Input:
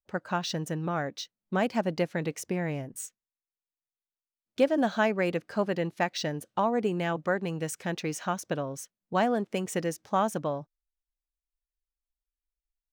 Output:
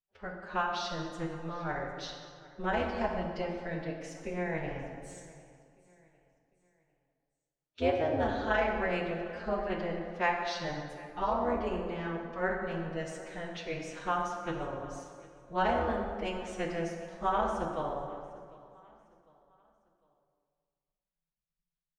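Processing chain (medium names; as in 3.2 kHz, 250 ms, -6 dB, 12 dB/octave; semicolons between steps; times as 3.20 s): low-pass 4.3 kHz 12 dB/octave; AM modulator 170 Hz, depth 95%; peaking EQ 190 Hz -5.5 dB 2.7 oct; feedback delay 442 ms, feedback 38%, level -21.5 dB; time stretch by phase-locked vocoder 1.7×; plate-style reverb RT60 1.9 s, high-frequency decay 0.6×, DRR 1 dB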